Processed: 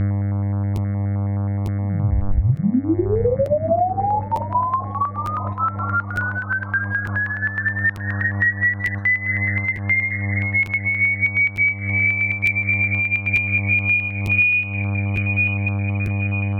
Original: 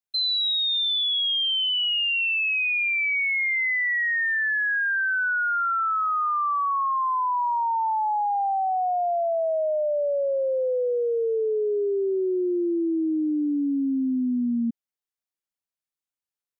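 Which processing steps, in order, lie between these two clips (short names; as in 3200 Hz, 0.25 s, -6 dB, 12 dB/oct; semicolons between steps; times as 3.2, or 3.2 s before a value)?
shoebox room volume 31 m³, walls mixed, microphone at 1.5 m; inverted band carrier 2700 Hz; buzz 100 Hz, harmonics 22, -26 dBFS -8 dB/oct; air absorption 97 m; diffused feedback echo 0.905 s, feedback 47%, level -15.5 dB; reverb removal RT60 0.74 s; bell 400 Hz -14.5 dB 0.34 oct; compressor 12:1, threshold -22 dBFS, peak gain reduction 16.5 dB; crackling interface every 0.90 s, samples 512, repeat, from 0.75; stepped notch 9.5 Hz 920–2000 Hz; gain +8.5 dB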